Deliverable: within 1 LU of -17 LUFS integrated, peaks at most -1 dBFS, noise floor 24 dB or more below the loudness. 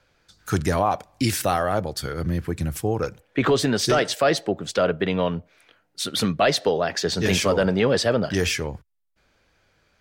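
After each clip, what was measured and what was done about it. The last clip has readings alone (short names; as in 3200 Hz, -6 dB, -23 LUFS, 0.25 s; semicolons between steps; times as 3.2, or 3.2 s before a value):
loudness -23.0 LUFS; peak -9.5 dBFS; loudness target -17.0 LUFS
-> gain +6 dB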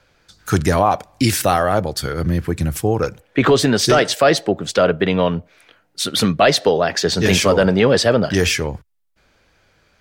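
loudness -17.0 LUFS; peak -3.5 dBFS; noise floor -60 dBFS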